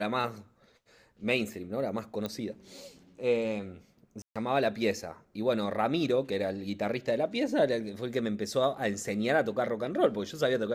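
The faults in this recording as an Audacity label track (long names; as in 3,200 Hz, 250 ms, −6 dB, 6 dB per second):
2.260000	2.260000	click −20 dBFS
4.220000	4.360000	drop-out 136 ms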